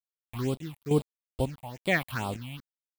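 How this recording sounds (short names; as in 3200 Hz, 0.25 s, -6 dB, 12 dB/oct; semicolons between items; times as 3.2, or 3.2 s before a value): a quantiser's noise floor 6-bit, dither none; phasing stages 6, 2.3 Hz, lowest notch 380–1800 Hz; chopped level 1.1 Hz, depth 65%, duty 60%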